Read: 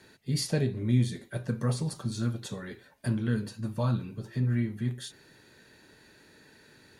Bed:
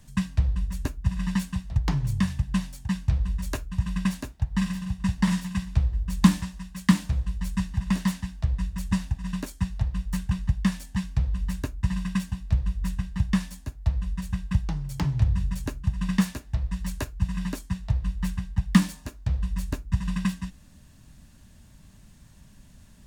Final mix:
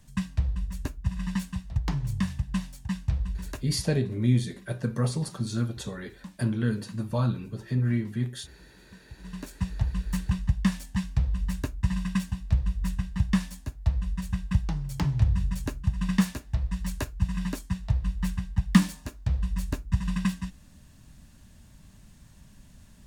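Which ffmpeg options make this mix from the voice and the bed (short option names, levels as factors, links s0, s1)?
-filter_complex "[0:a]adelay=3350,volume=1.26[s0];[1:a]volume=14.1,afade=t=out:st=3.25:d=0.8:silence=0.0668344,afade=t=in:st=9.06:d=0.73:silence=0.0473151[s1];[s0][s1]amix=inputs=2:normalize=0"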